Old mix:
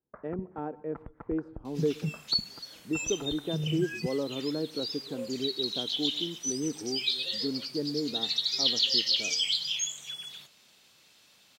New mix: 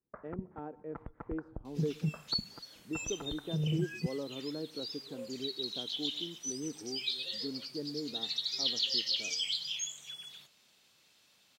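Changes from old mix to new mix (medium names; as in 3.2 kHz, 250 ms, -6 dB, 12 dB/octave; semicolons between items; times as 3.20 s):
speech -7.5 dB; second sound -6.0 dB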